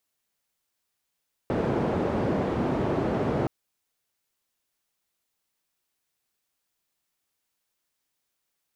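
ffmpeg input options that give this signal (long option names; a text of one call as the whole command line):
ffmpeg -f lavfi -i "anoisesrc=color=white:duration=1.97:sample_rate=44100:seed=1,highpass=frequency=89,lowpass=frequency=470,volume=-4.1dB" out.wav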